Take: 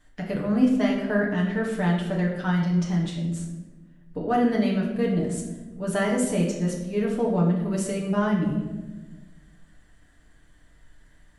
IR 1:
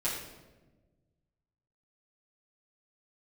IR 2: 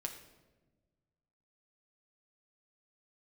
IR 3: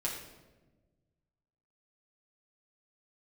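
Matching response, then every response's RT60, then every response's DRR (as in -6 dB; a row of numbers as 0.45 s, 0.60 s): 3; 1.2 s, 1.3 s, 1.2 s; -9.5 dB, 3.5 dB, -4.0 dB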